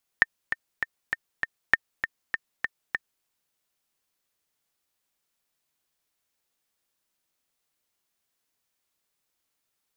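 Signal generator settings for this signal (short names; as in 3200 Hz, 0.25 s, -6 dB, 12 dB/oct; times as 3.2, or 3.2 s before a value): metronome 198 bpm, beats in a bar 5, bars 2, 1810 Hz, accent 9 dB -3.5 dBFS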